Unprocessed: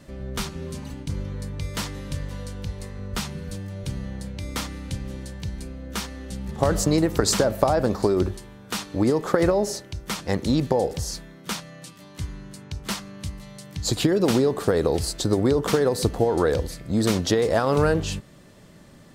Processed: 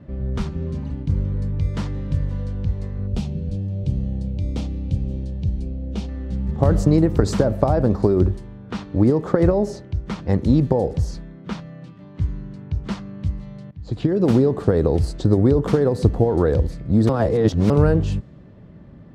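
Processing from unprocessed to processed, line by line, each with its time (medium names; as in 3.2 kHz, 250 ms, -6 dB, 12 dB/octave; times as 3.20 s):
3.07–6.09 s: high-order bell 1.4 kHz -12 dB 1.3 oct
13.71–14.31 s: fade in, from -20.5 dB
17.09–17.70 s: reverse
whole clip: high-pass 56 Hz; tilt EQ -3.5 dB/octave; level-controlled noise filter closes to 2.9 kHz, open at -13 dBFS; trim -2 dB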